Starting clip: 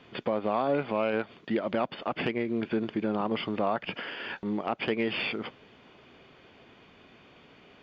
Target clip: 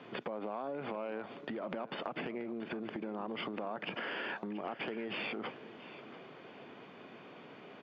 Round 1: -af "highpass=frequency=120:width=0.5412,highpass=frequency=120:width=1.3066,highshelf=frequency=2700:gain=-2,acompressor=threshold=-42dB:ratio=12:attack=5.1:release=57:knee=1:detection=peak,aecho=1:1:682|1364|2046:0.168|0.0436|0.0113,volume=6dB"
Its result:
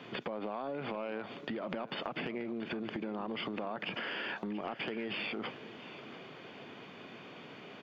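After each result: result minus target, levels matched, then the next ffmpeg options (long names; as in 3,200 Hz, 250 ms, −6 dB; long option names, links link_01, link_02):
4,000 Hz band +3.0 dB; 125 Hz band +2.5 dB
-af "highpass=frequency=120:width=0.5412,highpass=frequency=120:width=1.3066,highshelf=frequency=2700:gain=-13.5,acompressor=threshold=-42dB:ratio=12:attack=5.1:release=57:knee=1:detection=peak,aecho=1:1:682|1364|2046:0.168|0.0436|0.0113,volume=6dB"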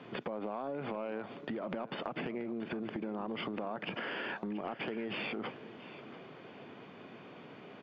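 125 Hz band +3.0 dB
-af "highpass=frequency=120:width=0.5412,highpass=frequency=120:width=1.3066,highshelf=frequency=2700:gain=-13.5,acompressor=threshold=-42dB:ratio=12:attack=5.1:release=57:knee=1:detection=peak,lowshelf=frequency=170:gain=-7.5,aecho=1:1:682|1364|2046:0.168|0.0436|0.0113,volume=6dB"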